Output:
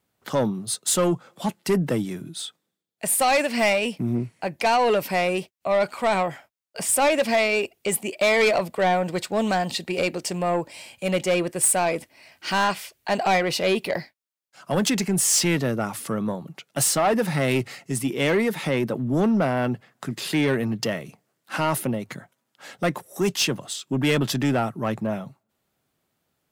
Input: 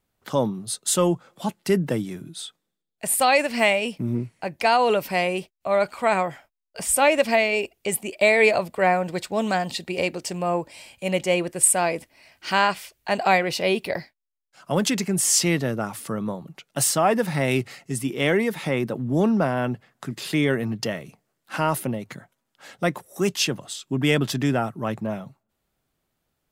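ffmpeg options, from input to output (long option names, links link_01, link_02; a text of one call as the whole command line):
ffmpeg -i in.wav -filter_complex "[0:a]highpass=94,acrossover=split=4900[link_01][link_02];[link_02]acrusher=bits=5:mode=log:mix=0:aa=0.000001[link_03];[link_01][link_03]amix=inputs=2:normalize=0,asoftclip=type=tanh:threshold=-17dB,volume=2.5dB" out.wav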